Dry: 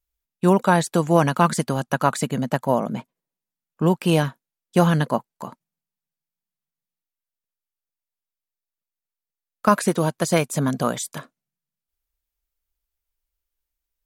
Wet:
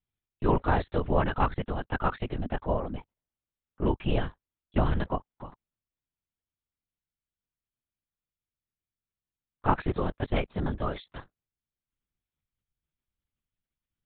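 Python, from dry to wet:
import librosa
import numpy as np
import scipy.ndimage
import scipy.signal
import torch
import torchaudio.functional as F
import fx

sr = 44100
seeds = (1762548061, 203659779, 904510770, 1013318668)

y = fx.lpc_vocoder(x, sr, seeds[0], excitation='whisper', order=8)
y = F.gain(torch.from_numpy(y), -7.5).numpy()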